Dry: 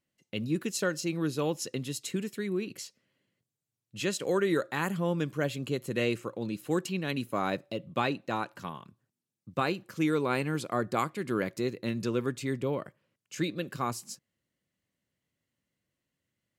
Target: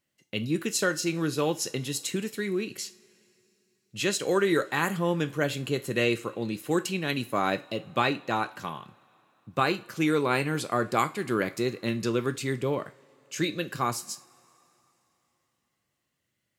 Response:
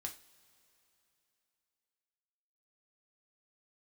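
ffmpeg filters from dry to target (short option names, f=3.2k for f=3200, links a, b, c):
-filter_complex "[0:a]asplit=2[a][b];[b]highpass=f=880:p=1[c];[1:a]atrim=start_sample=2205,lowshelf=f=170:g=10[d];[c][d]afir=irnorm=-1:irlink=0,volume=3.5dB[e];[a][e]amix=inputs=2:normalize=0"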